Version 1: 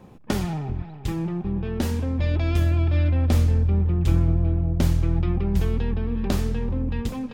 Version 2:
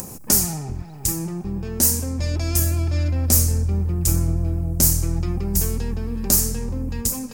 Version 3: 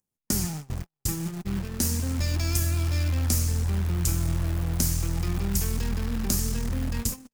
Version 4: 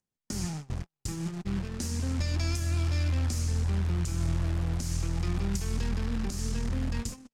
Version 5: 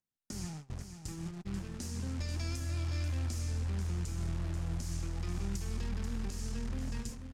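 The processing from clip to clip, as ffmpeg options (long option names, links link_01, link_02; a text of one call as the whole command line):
ffmpeg -i in.wav -af "acompressor=mode=upward:threshold=-28dB:ratio=2.5,aexciter=amount=9.8:drive=9.2:freq=5300,volume=-1dB" out.wav
ffmpeg -i in.wav -filter_complex "[0:a]acrossover=split=340|940|5200[link_01][link_02][link_03][link_04];[link_01]acompressor=threshold=-23dB:ratio=4[link_05];[link_02]acompressor=threshold=-49dB:ratio=4[link_06];[link_03]acompressor=threshold=-34dB:ratio=4[link_07];[link_04]acompressor=threshold=-31dB:ratio=4[link_08];[link_05][link_06][link_07][link_08]amix=inputs=4:normalize=0,acrusher=bits=7:dc=4:mix=0:aa=0.000001,agate=range=-52dB:threshold=-28dB:ratio=16:detection=peak" out.wav
ffmpeg -i in.wav -af "alimiter=limit=-17.5dB:level=0:latency=1:release=171,lowpass=7100,volume=-2dB" out.wav
ffmpeg -i in.wav -af "aecho=1:1:487:0.376,volume=-7.5dB" out.wav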